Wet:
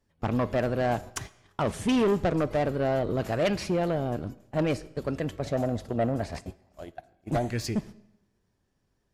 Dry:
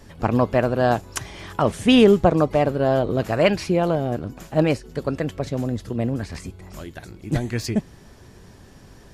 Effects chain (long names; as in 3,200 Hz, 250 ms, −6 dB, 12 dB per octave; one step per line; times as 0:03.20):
noise gate −33 dBFS, range −24 dB
0:05.44–0:07.48: parametric band 670 Hz +14.5 dB 0.68 octaves
soft clipping −15.5 dBFS, distortion −10 dB
comb and all-pass reverb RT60 0.86 s, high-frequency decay 0.9×, pre-delay 5 ms, DRR 18.5 dB
level −4 dB